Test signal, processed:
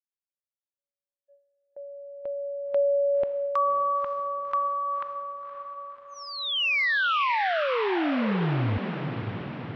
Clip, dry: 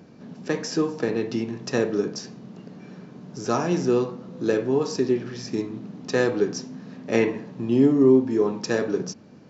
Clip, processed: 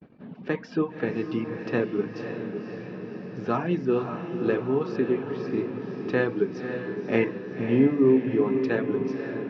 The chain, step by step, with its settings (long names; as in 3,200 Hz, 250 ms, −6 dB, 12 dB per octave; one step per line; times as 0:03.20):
low-pass filter 3,100 Hz 24 dB per octave
reverb reduction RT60 0.74 s
noise gate −49 dBFS, range −44 dB
dynamic equaliser 580 Hz, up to −3 dB, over −34 dBFS, Q 0.72
on a send: feedback delay with all-pass diffusion 552 ms, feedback 61%, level −7 dB